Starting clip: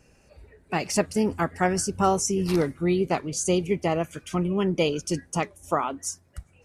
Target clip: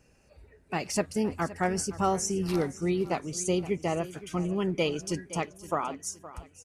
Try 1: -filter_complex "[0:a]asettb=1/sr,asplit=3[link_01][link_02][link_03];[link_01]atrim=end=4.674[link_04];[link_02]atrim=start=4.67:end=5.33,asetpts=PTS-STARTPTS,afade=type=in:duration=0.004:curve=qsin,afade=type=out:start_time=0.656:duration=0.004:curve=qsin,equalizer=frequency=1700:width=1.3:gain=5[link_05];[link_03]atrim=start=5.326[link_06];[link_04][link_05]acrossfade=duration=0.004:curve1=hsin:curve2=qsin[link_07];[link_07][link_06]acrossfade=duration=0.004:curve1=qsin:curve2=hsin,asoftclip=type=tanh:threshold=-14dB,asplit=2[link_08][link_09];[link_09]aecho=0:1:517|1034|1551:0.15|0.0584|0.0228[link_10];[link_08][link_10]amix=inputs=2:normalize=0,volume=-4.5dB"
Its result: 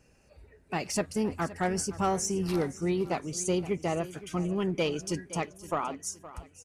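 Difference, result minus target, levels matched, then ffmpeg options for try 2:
soft clipping: distortion +15 dB
-filter_complex "[0:a]asettb=1/sr,asplit=3[link_01][link_02][link_03];[link_01]atrim=end=4.674[link_04];[link_02]atrim=start=4.67:end=5.33,asetpts=PTS-STARTPTS,afade=type=in:duration=0.004:curve=qsin,afade=type=out:start_time=0.656:duration=0.004:curve=qsin,equalizer=frequency=1700:width=1.3:gain=5[link_05];[link_03]atrim=start=5.326[link_06];[link_04][link_05]acrossfade=duration=0.004:curve1=hsin:curve2=qsin[link_07];[link_07][link_06]acrossfade=duration=0.004:curve1=qsin:curve2=hsin,asoftclip=type=tanh:threshold=-5dB,asplit=2[link_08][link_09];[link_09]aecho=0:1:517|1034|1551:0.15|0.0584|0.0228[link_10];[link_08][link_10]amix=inputs=2:normalize=0,volume=-4.5dB"

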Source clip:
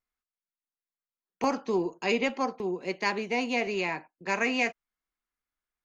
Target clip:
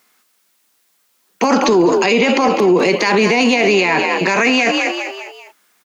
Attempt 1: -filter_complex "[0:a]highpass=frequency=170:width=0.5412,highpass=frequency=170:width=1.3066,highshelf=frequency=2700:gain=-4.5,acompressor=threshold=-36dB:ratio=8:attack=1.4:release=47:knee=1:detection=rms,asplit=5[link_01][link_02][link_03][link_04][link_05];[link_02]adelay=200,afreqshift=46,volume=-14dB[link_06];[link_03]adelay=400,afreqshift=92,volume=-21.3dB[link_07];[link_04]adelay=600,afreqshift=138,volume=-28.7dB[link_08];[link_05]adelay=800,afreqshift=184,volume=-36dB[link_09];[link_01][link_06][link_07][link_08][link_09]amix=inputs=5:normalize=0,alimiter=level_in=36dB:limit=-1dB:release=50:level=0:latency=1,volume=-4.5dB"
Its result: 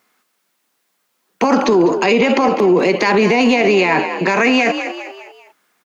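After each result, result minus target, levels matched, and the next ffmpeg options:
downward compressor: peak gain reduction +5.5 dB; 4,000 Hz band −3.5 dB
-filter_complex "[0:a]highpass=frequency=170:width=0.5412,highpass=frequency=170:width=1.3066,highshelf=frequency=2700:gain=-4.5,acompressor=threshold=-29dB:ratio=8:attack=1.4:release=47:knee=1:detection=rms,asplit=5[link_01][link_02][link_03][link_04][link_05];[link_02]adelay=200,afreqshift=46,volume=-14dB[link_06];[link_03]adelay=400,afreqshift=92,volume=-21.3dB[link_07];[link_04]adelay=600,afreqshift=138,volume=-28.7dB[link_08];[link_05]adelay=800,afreqshift=184,volume=-36dB[link_09];[link_01][link_06][link_07][link_08][link_09]amix=inputs=5:normalize=0,alimiter=level_in=36dB:limit=-1dB:release=50:level=0:latency=1,volume=-4.5dB"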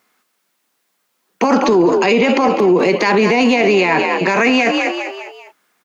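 4,000 Hz band −3.0 dB
-filter_complex "[0:a]highpass=frequency=170:width=0.5412,highpass=frequency=170:width=1.3066,highshelf=frequency=2700:gain=3.5,acompressor=threshold=-29dB:ratio=8:attack=1.4:release=47:knee=1:detection=rms,asplit=5[link_01][link_02][link_03][link_04][link_05];[link_02]adelay=200,afreqshift=46,volume=-14dB[link_06];[link_03]adelay=400,afreqshift=92,volume=-21.3dB[link_07];[link_04]adelay=600,afreqshift=138,volume=-28.7dB[link_08];[link_05]adelay=800,afreqshift=184,volume=-36dB[link_09];[link_01][link_06][link_07][link_08][link_09]amix=inputs=5:normalize=0,alimiter=level_in=36dB:limit=-1dB:release=50:level=0:latency=1,volume=-4.5dB"

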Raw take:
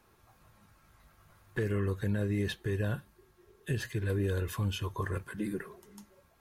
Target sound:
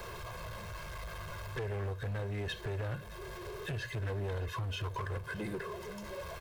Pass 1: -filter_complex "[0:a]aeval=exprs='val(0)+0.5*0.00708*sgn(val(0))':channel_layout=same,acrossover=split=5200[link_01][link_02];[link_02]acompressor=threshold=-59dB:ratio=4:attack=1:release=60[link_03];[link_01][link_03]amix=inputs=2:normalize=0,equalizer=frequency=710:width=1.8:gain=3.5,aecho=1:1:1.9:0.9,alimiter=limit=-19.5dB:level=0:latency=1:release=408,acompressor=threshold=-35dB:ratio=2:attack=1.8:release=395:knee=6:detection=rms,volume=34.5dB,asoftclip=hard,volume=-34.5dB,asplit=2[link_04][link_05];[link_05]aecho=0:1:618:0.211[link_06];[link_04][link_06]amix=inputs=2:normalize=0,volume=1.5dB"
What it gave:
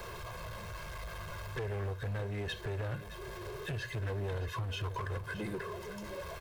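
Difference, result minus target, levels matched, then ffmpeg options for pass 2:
echo-to-direct +6.5 dB
-filter_complex "[0:a]aeval=exprs='val(0)+0.5*0.00708*sgn(val(0))':channel_layout=same,acrossover=split=5200[link_01][link_02];[link_02]acompressor=threshold=-59dB:ratio=4:attack=1:release=60[link_03];[link_01][link_03]amix=inputs=2:normalize=0,equalizer=frequency=710:width=1.8:gain=3.5,aecho=1:1:1.9:0.9,alimiter=limit=-19.5dB:level=0:latency=1:release=408,acompressor=threshold=-35dB:ratio=2:attack=1.8:release=395:knee=6:detection=rms,volume=34.5dB,asoftclip=hard,volume=-34.5dB,asplit=2[link_04][link_05];[link_05]aecho=0:1:618:0.1[link_06];[link_04][link_06]amix=inputs=2:normalize=0,volume=1.5dB"

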